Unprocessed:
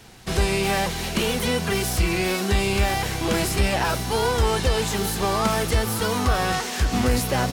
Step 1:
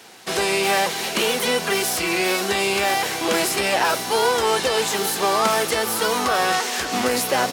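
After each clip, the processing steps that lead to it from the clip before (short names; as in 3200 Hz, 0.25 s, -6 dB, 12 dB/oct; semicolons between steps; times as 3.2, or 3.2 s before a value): HPF 350 Hz 12 dB/oct; gain +4.5 dB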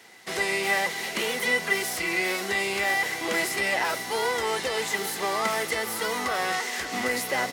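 small resonant body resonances 2000 Hz, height 16 dB, ringing for 35 ms; gain -8 dB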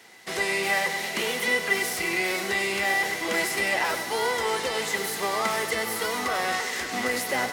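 split-band echo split 510 Hz, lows 0.309 s, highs 98 ms, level -10 dB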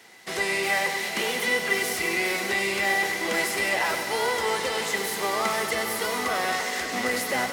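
on a send at -13.5 dB: reverb RT60 3.7 s, pre-delay 40 ms; on the sum: lo-fi delay 0.177 s, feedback 80%, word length 8-bit, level -13.5 dB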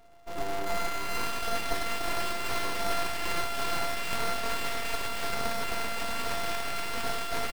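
sample sorter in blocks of 64 samples; bouncing-ball echo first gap 0.39 s, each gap 0.9×, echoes 5; full-wave rectifier; gain -3 dB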